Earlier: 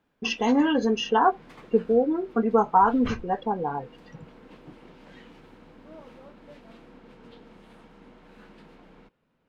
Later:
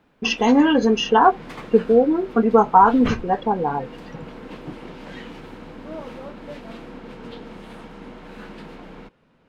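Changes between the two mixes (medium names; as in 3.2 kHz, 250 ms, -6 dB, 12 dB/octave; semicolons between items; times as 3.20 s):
speech +6.0 dB; background +12.0 dB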